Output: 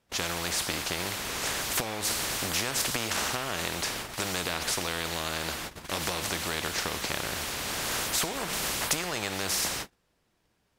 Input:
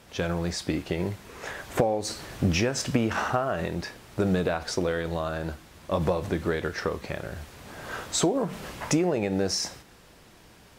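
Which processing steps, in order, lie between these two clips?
gate -47 dBFS, range -38 dB; spectrum-flattening compressor 4:1

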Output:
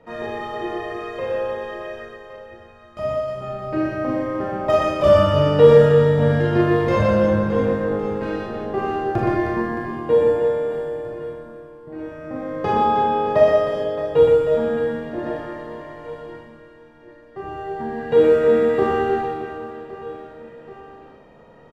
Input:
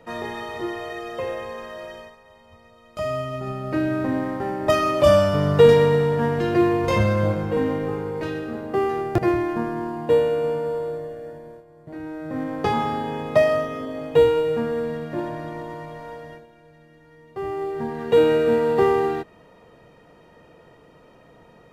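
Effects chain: low-pass 2.4 kHz 6 dB/octave; reverse bouncing-ball echo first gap 120 ms, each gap 1.6×, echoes 5; Schroeder reverb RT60 0.48 s, combs from 28 ms, DRR -1 dB; trim -2 dB

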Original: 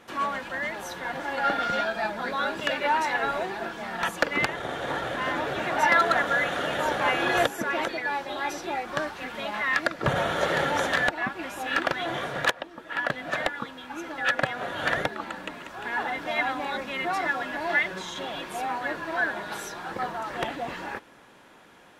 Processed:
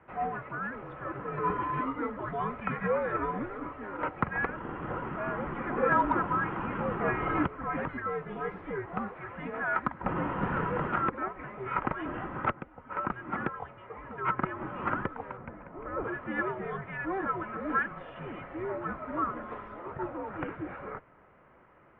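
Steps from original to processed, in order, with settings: 15.37–16.04 s: tilt EQ -4.5 dB/octave; mistuned SSB -390 Hz 450–2500 Hz; Chebyshev shaper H 3 -42 dB, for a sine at -7 dBFS; trim -4 dB

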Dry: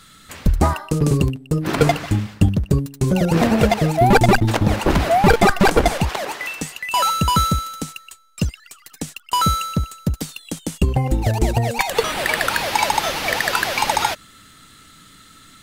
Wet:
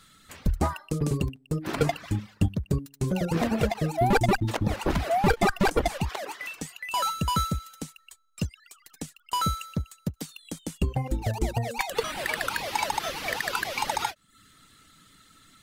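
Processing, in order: reverb removal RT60 0.51 s; endings held to a fixed fall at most 490 dB/s; trim -8.5 dB

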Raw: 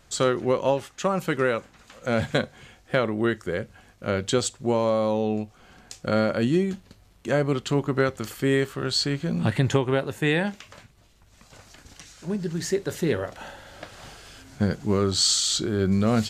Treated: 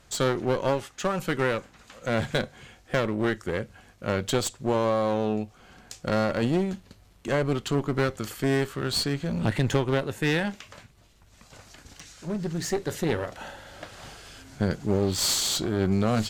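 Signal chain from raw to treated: spectral replace 14.94–15.24 s, 660–4500 Hz both; one-sided clip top -29.5 dBFS

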